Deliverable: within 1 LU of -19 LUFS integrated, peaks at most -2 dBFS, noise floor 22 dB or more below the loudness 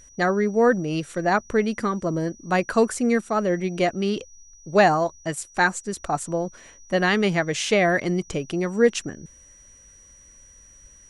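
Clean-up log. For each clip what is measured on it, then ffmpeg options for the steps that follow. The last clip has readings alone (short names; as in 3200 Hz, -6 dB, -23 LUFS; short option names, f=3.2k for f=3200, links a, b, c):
steady tone 5800 Hz; tone level -49 dBFS; loudness -23.0 LUFS; peak -5.0 dBFS; loudness target -19.0 LUFS
-> -af "bandreject=f=5.8k:w=30"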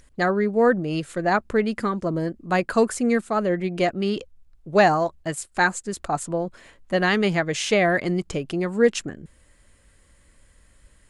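steady tone none; loudness -23.0 LUFS; peak -5.0 dBFS; loudness target -19.0 LUFS
-> -af "volume=4dB,alimiter=limit=-2dB:level=0:latency=1"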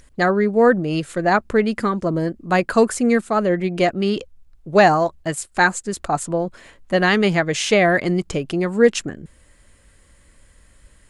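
loudness -19.0 LUFS; peak -2.0 dBFS; noise floor -53 dBFS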